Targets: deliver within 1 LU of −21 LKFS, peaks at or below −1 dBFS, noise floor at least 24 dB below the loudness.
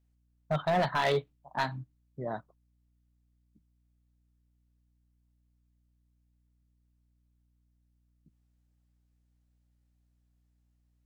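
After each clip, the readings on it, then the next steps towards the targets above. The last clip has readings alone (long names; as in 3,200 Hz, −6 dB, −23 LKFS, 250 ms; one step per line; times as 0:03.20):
share of clipped samples 0.4%; peaks flattened at −21.5 dBFS; mains hum 60 Hz; hum harmonics up to 300 Hz; level of the hum −68 dBFS; integrated loudness −32.0 LKFS; sample peak −21.5 dBFS; target loudness −21.0 LKFS
→ clipped peaks rebuilt −21.5 dBFS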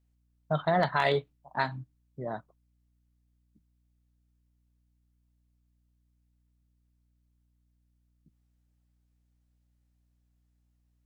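share of clipped samples 0.0%; mains hum 60 Hz; hum harmonics up to 300 Hz; level of the hum −68 dBFS
→ hum removal 60 Hz, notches 5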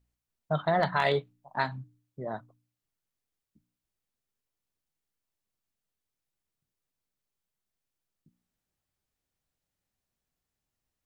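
mains hum none found; integrated loudness −30.0 LKFS; sample peak −12.5 dBFS; target loudness −21.0 LKFS
→ level +9 dB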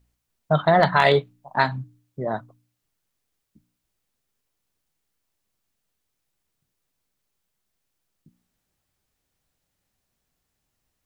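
integrated loudness −21.5 LKFS; sample peak −3.5 dBFS; background noise floor −79 dBFS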